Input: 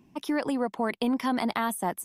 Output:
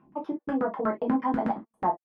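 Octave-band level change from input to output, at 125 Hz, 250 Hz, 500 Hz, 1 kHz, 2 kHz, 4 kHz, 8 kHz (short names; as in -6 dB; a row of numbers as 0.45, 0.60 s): +2.0 dB, -0.5 dB, +1.0 dB, +2.0 dB, -7.0 dB, under -20 dB, under -35 dB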